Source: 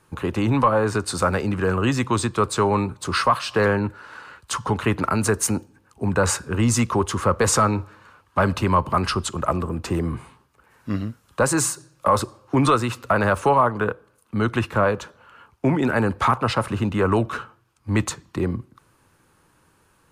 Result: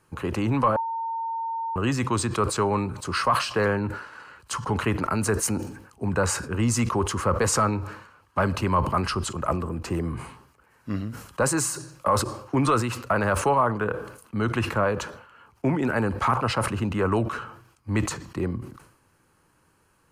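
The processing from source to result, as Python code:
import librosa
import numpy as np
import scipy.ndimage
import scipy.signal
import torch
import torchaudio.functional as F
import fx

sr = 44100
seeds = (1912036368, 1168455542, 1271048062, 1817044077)

y = fx.edit(x, sr, fx.bleep(start_s=0.76, length_s=1.0, hz=910.0, db=-22.5), tone=tone)
y = fx.notch(y, sr, hz=3600.0, q=9.7)
y = fx.sustainer(y, sr, db_per_s=80.0)
y = F.gain(torch.from_numpy(y), -4.0).numpy()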